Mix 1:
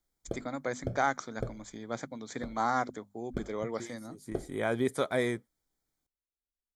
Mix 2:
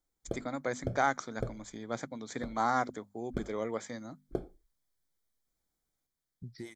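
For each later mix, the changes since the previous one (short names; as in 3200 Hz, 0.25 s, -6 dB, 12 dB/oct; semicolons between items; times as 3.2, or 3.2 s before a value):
second voice: entry +2.80 s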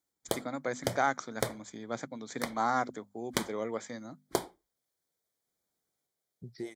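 second voice: add band shelf 530 Hz +9 dB 1.3 oct; background: remove running mean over 46 samples; master: add HPF 110 Hz 12 dB/oct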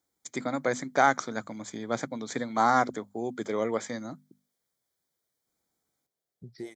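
first voice +6.5 dB; background: muted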